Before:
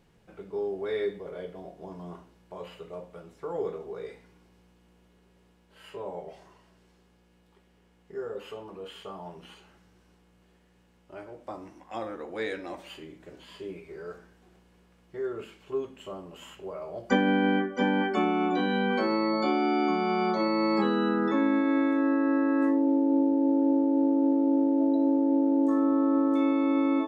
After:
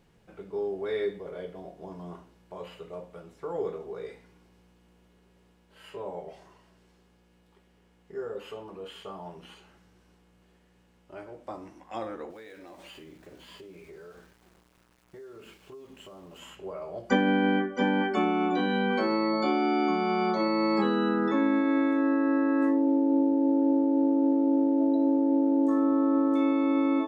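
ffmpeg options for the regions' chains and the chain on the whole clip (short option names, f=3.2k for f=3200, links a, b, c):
-filter_complex "[0:a]asettb=1/sr,asplit=3[a][b][c];[a]atrim=end=12.304[d];[b]atrim=start=12.3:end=16.39,asetpts=PTS-STARTPTS,afade=t=in:d=0.004:c=qsin,afade=t=out:st=4.086:d=0.004:c=qsin,acompressor=threshold=-43dB:ratio=10:attack=3.2:release=140:knee=1:detection=peak,aeval=exprs='val(0)*gte(abs(val(0)),0.00133)':c=same[e];[c]atrim=start=16.386[f];[d][e]acrossfade=d=0.004:c1=hsin:c2=qsin[g];[g][f]acrossfade=d=0.004:c1=qsin:c2=hsin"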